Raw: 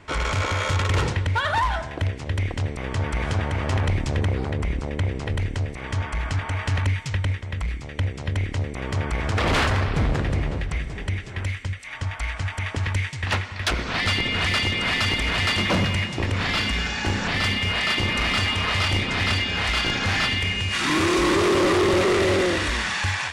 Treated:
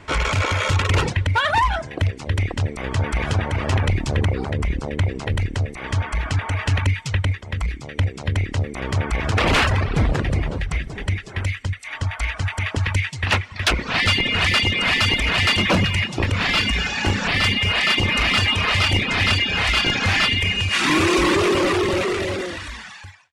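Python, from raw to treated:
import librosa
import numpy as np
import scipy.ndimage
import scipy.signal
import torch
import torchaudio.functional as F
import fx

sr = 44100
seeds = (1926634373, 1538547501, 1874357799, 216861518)

y = fx.fade_out_tail(x, sr, length_s=2.12)
y = fx.dereverb_blind(y, sr, rt60_s=0.71)
y = fx.dynamic_eq(y, sr, hz=2600.0, q=3.4, threshold_db=-39.0, ratio=4.0, max_db=4)
y = F.gain(torch.from_numpy(y), 4.5).numpy()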